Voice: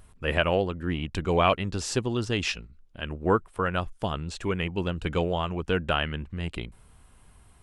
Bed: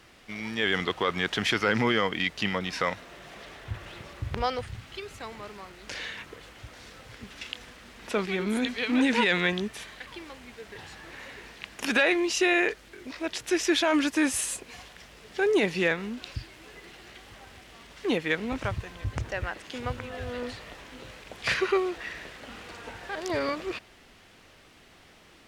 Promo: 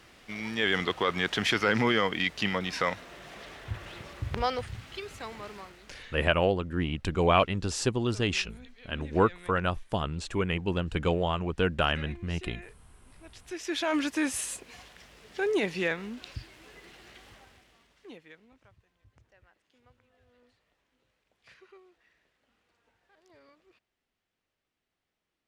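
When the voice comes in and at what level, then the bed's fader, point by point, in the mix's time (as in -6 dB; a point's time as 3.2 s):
5.90 s, -0.5 dB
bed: 5.59 s -0.5 dB
6.56 s -23.5 dB
13.13 s -23.5 dB
13.89 s -4 dB
17.29 s -4 dB
18.58 s -30.5 dB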